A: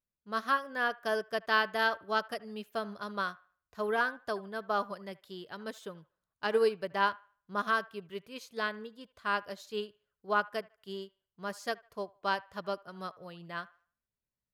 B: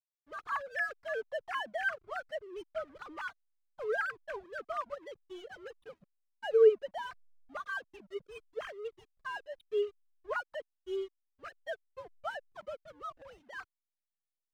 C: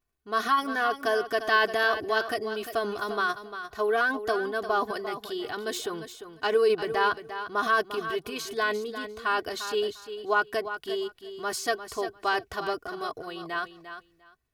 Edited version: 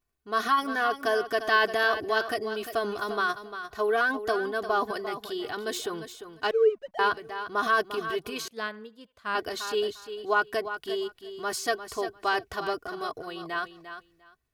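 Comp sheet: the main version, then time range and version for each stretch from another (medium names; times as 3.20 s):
C
6.51–6.99 s: from B
8.48–9.35 s: from A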